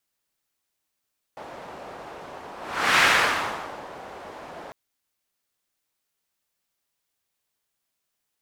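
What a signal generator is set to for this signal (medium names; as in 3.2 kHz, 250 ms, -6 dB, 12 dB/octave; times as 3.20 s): whoosh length 3.35 s, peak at 1.63 s, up 0.47 s, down 0.91 s, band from 730 Hz, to 1.8 kHz, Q 1.3, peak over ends 22 dB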